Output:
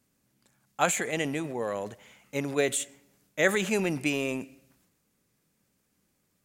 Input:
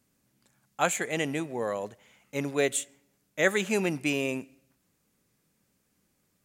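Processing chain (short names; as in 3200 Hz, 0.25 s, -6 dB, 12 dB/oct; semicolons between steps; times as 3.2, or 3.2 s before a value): transient shaper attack +3 dB, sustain +7 dB; gain -1.5 dB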